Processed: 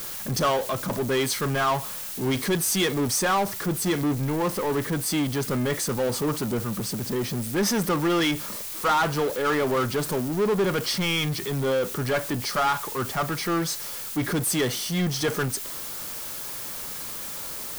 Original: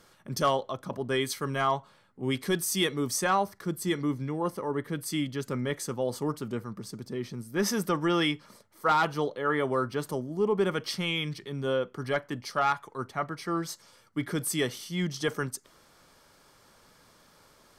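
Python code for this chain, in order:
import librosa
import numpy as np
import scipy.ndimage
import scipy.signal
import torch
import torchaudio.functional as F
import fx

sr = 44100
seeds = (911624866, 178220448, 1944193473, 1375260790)

y = fx.dmg_noise_colour(x, sr, seeds[0], colour='blue', level_db=-51.0)
y = fx.power_curve(y, sr, exponent=0.5)
y = y * 10.0 ** (-1.5 / 20.0)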